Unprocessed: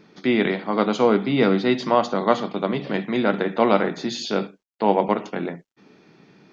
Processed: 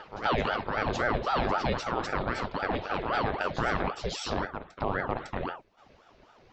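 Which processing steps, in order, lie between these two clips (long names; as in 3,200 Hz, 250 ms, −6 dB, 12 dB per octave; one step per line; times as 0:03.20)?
backwards echo 554 ms −10.5 dB
brickwall limiter −12.5 dBFS, peak gain reduction 9.5 dB
ring modulator whose carrier an LFO sweeps 630 Hz, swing 75%, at 3.8 Hz
level −3 dB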